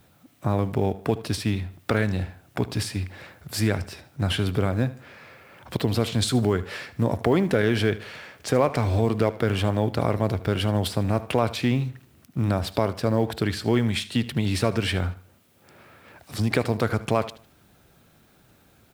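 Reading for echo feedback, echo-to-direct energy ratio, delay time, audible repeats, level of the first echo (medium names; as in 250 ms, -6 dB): 33%, -16.5 dB, 76 ms, 2, -17.0 dB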